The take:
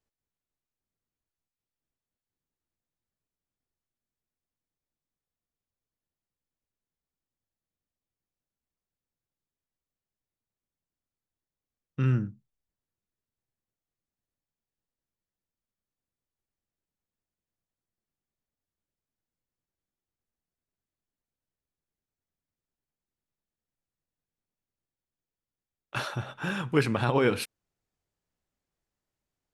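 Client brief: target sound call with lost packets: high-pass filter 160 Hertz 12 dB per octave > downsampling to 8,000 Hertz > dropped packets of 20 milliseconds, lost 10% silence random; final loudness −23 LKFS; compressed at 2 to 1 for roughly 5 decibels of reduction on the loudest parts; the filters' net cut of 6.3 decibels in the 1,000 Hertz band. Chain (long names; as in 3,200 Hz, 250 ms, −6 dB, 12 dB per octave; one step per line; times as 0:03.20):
parametric band 1,000 Hz −8.5 dB
downward compressor 2 to 1, threshold −29 dBFS
high-pass filter 160 Hz 12 dB per octave
downsampling to 8,000 Hz
dropped packets of 20 ms, lost 10% silence random
level +12.5 dB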